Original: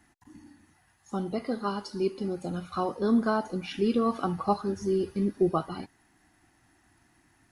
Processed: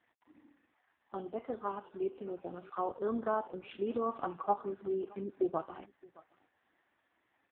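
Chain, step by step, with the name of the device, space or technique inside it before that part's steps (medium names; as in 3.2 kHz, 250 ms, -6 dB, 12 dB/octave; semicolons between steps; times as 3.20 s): 2.77–3.26 s: high-pass 110 Hz 12 dB/octave; dynamic bell 1.9 kHz, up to -5 dB, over -52 dBFS, Q 2.1; satellite phone (band-pass 390–3200 Hz; delay 619 ms -24 dB; trim -3 dB; AMR-NB 4.75 kbps 8 kHz)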